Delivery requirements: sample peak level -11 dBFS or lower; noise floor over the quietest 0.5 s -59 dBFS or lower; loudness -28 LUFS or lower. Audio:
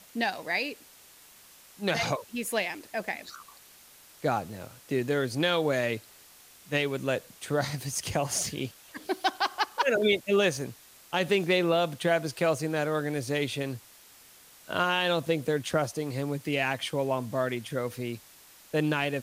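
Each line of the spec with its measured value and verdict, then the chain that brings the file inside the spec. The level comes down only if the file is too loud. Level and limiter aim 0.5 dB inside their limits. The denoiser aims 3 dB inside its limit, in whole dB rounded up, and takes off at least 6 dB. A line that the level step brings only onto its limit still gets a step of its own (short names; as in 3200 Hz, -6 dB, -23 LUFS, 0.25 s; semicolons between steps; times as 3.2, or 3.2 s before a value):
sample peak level -14.0 dBFS: OK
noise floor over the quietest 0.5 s -54 dBFS: fail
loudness -29.0 LUFS: OK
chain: denoiser 8 dB, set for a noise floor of -54 dBFS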